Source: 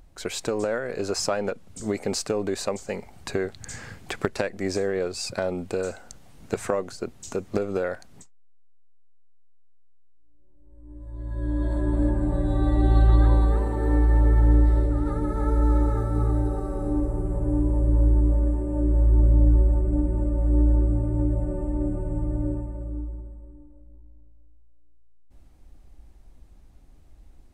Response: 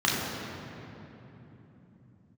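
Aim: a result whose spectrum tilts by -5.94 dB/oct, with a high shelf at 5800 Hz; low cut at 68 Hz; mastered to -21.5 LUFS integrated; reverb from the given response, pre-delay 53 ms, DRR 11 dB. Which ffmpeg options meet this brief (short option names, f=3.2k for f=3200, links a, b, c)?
-filter_complex "[0:a]highpass=68,highshelf=f=5.8k:g=4.5,asplit=2[a][b];[1:a]atrim=start_sample=2205,adelay=53[c];[b][c]afir=irnorm=-1:irlink=0,volume=-26dB[d];[a][d]amix=inputs=2:normalize=0,volume=5.5dB"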